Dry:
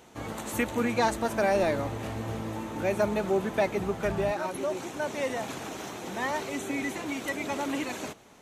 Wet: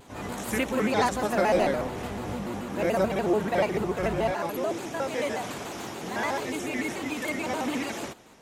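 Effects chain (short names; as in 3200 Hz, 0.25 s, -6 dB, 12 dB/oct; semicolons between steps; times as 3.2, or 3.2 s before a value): reverse echo 59 ms -3 dB; shaped vibrato square 6.9 Hz, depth 160 cents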